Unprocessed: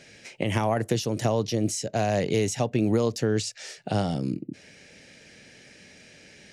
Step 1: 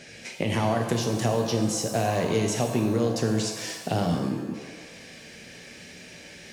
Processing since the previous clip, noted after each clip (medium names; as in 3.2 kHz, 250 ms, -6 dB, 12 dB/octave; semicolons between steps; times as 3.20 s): compression 2:1, threshold -31 dBFS, peak gain reduction 7.5 dB; pitch-shifted reverb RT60 1 s, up +7 st, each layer -8 dB, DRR 3.5 dB; trim +4 dB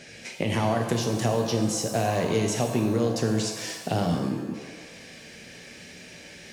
no audible change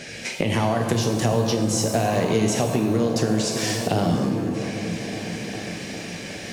compression 2:1, threshold -32 dBFS, peak gain reduction 7.5 dB; delay with an opening low-pass 405 ms, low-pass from 200 Hz, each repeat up 1 oct, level -6 dB; trim +9 dB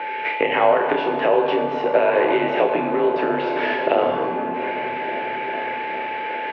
doubling 28 ms -7 dB; whistle 940 Hz -33 dBFS; mistuned SSB -72 Hz 450–2800 Hz; trim +7 dB